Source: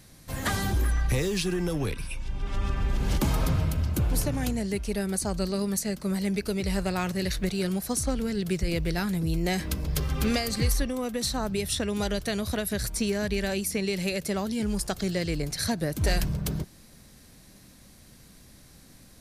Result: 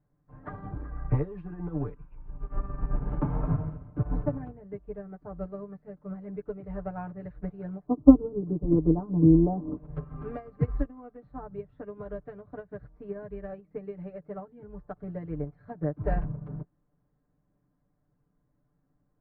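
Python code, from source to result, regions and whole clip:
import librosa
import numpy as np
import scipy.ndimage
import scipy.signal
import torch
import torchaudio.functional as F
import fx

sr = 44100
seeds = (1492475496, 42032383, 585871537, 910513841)

y = fx.chain(x, sr, fx.ellip_lowpass(hz=1100.0, order=4, stop_db=50),
    fx.peak_eq(hz=300.0, db=12.5, octaves=0.8), at=(7.86, 9.77))
y = scipy.signal.sosfilt(scipy.signal.butter(4, 1300.0, 'lowpass', fs=sr, output='sos'), y)
y = y + 0.95 * np.pad(y, (int(6.8 * sr / 1000.0), 0))[:len(y)]
y = fx.upward_expand(y, sr, threshold_db=-33.0, expansion=2.5)
y = F.gain(torch.from_numpy(y), 7.0).numpy()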